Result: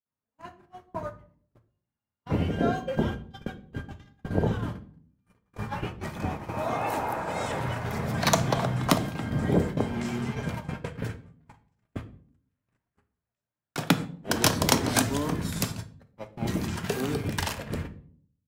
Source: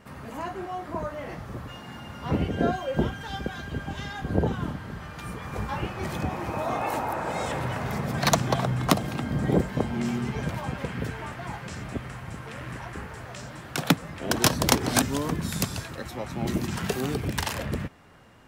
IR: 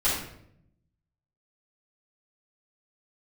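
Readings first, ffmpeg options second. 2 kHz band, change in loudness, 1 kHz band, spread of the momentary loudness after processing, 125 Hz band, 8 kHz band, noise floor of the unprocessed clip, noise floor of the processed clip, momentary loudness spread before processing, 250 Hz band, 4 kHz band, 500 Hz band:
-2.0 dB, 0.0 dB, -1.5 dB, 17 LU, -1.0 dB, -1.0 dB, -42 dBFS, under -85 dBFS, 14 LU, -1.0 dB, -1.5 dB, -1.0 dB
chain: -filter_complex "[0:a]agate=range=-52dB:threshold=-30dB:ratio=16:detection=peak,asplit=2[a][b];[1:a]atrim=start_sample=2205,asetrate=70560,aresample=44100[c];[b][c]afir=irnorm=-1:irlink=0,volume=-16dB[d];[a][d]amix=inputs=2:normalize=0,volume=-2dB"

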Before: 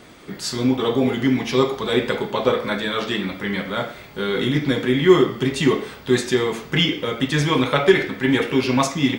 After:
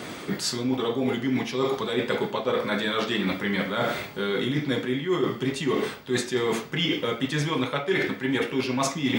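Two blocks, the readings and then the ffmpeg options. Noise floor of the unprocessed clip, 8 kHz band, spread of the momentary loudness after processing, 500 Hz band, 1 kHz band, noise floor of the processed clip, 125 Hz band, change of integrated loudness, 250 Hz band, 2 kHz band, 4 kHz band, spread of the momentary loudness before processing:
-42 dBFS, -2.5 dB, 2 LU, -6.5 dB, -5.0 dB, -38 dBFS, -7.0 dB, -6.0 dB, -6.5 dB, -5.0 dB, -5.0 dB, 9 LU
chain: -af "highpass=100,areverse,acompressor=threshold=-32dB:ratio=8,areverse,volume=9dB"

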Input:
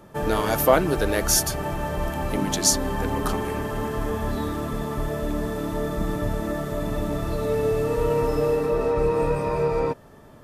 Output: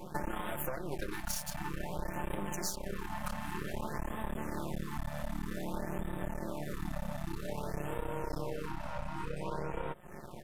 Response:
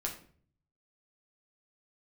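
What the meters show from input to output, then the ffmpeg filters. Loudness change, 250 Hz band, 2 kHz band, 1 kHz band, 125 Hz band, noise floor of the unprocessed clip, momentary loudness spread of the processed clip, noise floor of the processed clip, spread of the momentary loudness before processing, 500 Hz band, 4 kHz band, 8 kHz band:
-15.5 dB, -13.0 dB, -11.5 dB, -12.5 dB, -13.0 dB, -48 dBFS, 3 LU, -45 dBFS, 8 LU, -18.5 dB, -16.5 dB, -18.0 dB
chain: -af "aecho=1:1:5.6:0.99,acompressor=threshold=-33dB:ratio=16,aeval=exprs='max(val(0),0)':c=same,afftfilt=real='re*(1-between(b*sr/1024,360*pow(5500/360,0.5+0.5*sin(2*PI*0.53*pts/sr))/1.41,360*pow(5500/360,0.5+0.5*sin(2*PI*0.53*pts/sr))*1.41))':imag='im*(1-between(b*sr/1024,360*pow(5500/360,0.5+0.5*sin(2*PI*0.53*pts/sr))/1.41,360*pow(5500/360,0.5+0.5*sin(2*PI*0.53*pts/sr))*1.41))':win_size=1024:overlap=0.75,volume=3dB"

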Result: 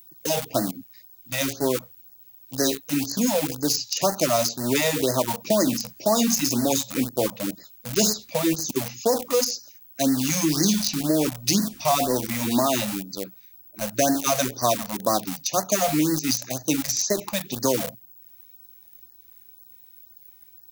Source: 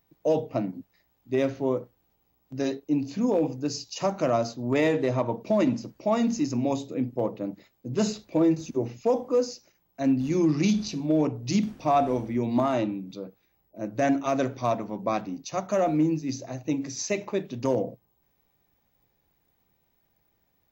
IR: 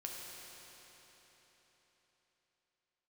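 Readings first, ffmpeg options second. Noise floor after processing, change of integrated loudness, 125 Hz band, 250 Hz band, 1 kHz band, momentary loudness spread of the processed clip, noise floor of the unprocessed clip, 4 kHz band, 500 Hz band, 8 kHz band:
-52 dBFS, +3.5 dB, +0.5 dB, +1.0 dB, +2.5 dB, 8 LU, -71 dBFS, +13.0 dB, +1.0 dB, n/a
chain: -filter_complex "[0:a]acrossover=split=150|1200|3300[a][b][c][d];[a]acompressor=threshold=-43dB:ratio=4[e];[b]acompressor=threshold=-24dB:ratio=4[f];[c]acompressor=threshold=-48dB:ratio=4[g];[d]acompressor=threshold=-44dB:ratio=4[h];[e][f][g][h]amix=inputs=4:normalize=0,asplit=2[i][j];[j]aeval=exprs='val(0)*gte(abs(val(0)),0.0266)':c=same,volume=-4dB[k];[i][k]amix=inputs=2:normalize=0,crystalizer=i=8:c=0,afftfilt=real='re*(1-between(b*sr/1024,310*pow(2900/310,0.5+0.5*sin(2*PI*2*pts/sr))/1.41,310*pow(2900/310,0.5+0.5*sin(2*PI*2*pts/sr))*1.41))':imag='im*(1-between(b*sr/1024,310*pow(2900/310,0.5+0.5*sin(2*PI*2*pts/sr))/1.41,310*pow(2900/310,0.5+0.5*sin(2*PI*2*pts/sr))*1.41))':win_size=1024:overlap=0.75"

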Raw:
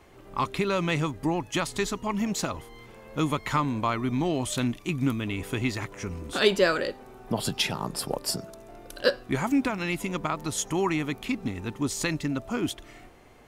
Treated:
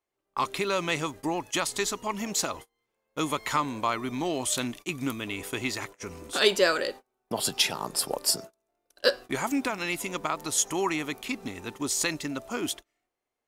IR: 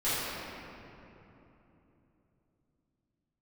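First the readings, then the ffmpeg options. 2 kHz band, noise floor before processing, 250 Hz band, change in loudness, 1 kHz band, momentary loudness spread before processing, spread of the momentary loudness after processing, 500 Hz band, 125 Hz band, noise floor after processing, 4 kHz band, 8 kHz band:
+0.5 dB, -50 dBFS, -5.0 dB, -0.5 dB, 0.0 dB, 9 LU, 10 LU, -1.0 dB, -9.5 dB, -83 dBFS, +2.5 dB, +5.5 dB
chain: -af "agate=range=-31dB:threshold=-38dB:ratio=16:detection=peak,bass=f=250:g=-11,treble=f=4k:g=6"

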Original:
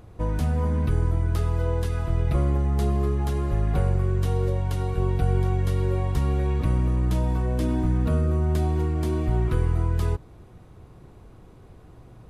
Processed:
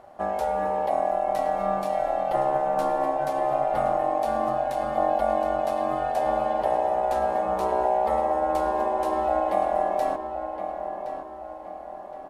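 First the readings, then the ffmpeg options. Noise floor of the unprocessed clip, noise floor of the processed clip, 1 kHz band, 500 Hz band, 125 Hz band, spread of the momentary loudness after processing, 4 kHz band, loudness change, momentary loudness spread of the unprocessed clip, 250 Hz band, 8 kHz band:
-49 dBFS, -39 dBFS, +14.0 dB, +7.5 dB, -23.5 dB, 9 LU, -2.0 dB, -0.5 dB, 3 LU, -6.5 dB, n/a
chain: -filter_complex "[0:a]aeval=exprs='val(0)*sin(2*PI*690*n/s)':c=same,asplit=2[a][b];[b]adelay=1068,lowpass=f=2.7k:p=1,volume=-8dB,asplit=2[c][d];[d]adelay=1068,lowpass=f=2.7k:p=1,volume=0.47,asplit=2[e][f];[f]adelay=1068,lowpass=f=2.7k:p=1,volume=0.47,asplit=2[g][h];[h]adelay=1068,lowpass=f=2.7k:p=1,volume=0.47,asplit=2[i][j];[j]adelay=1068,lowpass=f=2.7k:p=1,volume=0.47[k];[a][c][e][g][i][k]amix=inputs=6:normalize=0"

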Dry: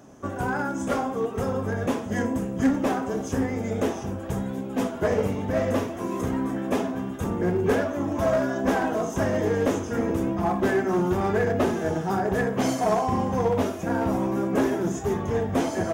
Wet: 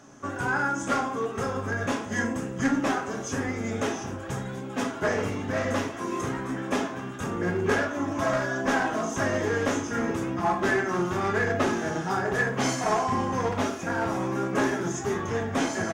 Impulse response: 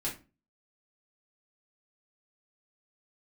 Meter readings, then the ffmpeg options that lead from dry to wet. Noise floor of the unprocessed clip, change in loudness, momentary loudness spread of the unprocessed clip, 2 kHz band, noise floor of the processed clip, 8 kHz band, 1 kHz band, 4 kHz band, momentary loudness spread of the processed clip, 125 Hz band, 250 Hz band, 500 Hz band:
-34 dBFS, -2.0 dB, 5 LU, +5.0 dB, -36 dBFS, +3.5 dB, 0.0 dB, +3.0 dB, 6 LU, -3.0 dB, -3.5 dB, -3.5 dB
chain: -filter_complex "[0:a]firequalizer=gain_entry='entry(560,0);entry(1300,9);entry(2700,7);entry(6300,9);entry(13000,-4)':delay=0.05:min_phase=1,asplit=2[a][b];[1:a]atrim=start_sample=2205[c];[b][c]afir=irnorm=-1:irlink=0,volume=-4.5dB[d];[a][d]amix=inputs=2:normalize=0,volume=-8dB"

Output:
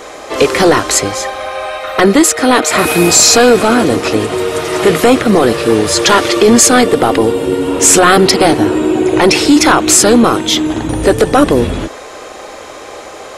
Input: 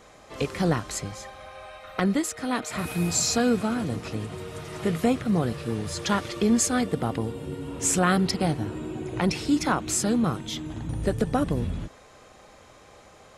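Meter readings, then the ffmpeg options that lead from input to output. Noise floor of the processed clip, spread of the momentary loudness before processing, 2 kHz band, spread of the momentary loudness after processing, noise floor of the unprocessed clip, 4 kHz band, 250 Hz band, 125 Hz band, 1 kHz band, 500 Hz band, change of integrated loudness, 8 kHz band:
-30 dBFS, 14 LU, +19.0 dB, 16 LU, -52 dBFS, +20.0 dB, +14.5 dB, +8.0 dB, +18.0 dB, +20.0 dB, +17.0 dB, +18.5 dB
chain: -af "lowshelf=f=240:t=q:w=1.5:g=-10,apsyclip=23dB,volume=-1.5dB"

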